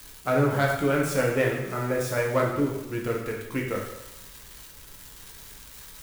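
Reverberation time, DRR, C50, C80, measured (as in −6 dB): 0.95 s, −1.5 dB, 3.5 dB, 6.0 dB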